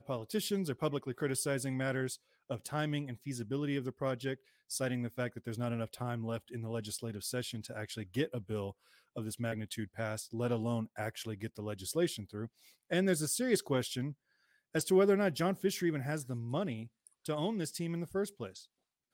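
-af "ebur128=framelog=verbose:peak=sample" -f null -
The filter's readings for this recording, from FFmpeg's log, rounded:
Integrated loudness:
  I:         -36.1 LUFS
  Threshold: -46.3 LUFS
Loudness range:
  LRA:         6.6 LU
  Threshold: -56.3 LUFS
  LRA low:   -39.5 LUFS
  LRA high:  -32.8 LUFS
Sample peak:
  Peak:      -17.2 dBFS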